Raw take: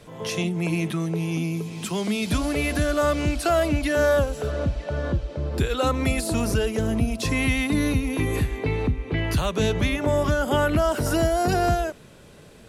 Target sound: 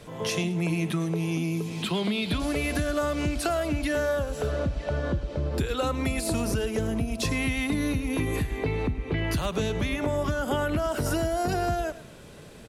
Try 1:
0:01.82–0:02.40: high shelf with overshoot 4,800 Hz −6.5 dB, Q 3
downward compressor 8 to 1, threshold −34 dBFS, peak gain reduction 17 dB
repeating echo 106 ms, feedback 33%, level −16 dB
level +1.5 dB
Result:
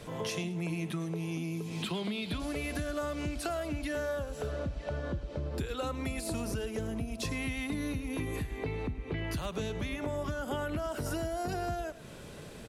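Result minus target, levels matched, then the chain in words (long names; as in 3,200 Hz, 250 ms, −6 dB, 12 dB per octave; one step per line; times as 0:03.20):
downward compressor: peak gain reduction +8 dB
0:01.82–0:02.40: high shelf with overshoot 4,800 Hz −6.5 dB, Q 3
downward compressor 8 to 1, threshold −25 dBFS, peak gain reduction 9 dB
repeating echo 106 ms, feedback 33%, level −16 dB
level +1.5 dB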